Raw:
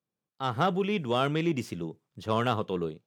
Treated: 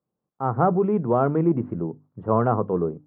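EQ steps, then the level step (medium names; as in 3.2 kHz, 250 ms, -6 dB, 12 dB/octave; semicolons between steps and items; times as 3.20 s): low-pass 1.2 kHz 24 dB/octave; distance through air 210 m; hum notches 50/100/150/200/250/300 Hz; +8.0 dB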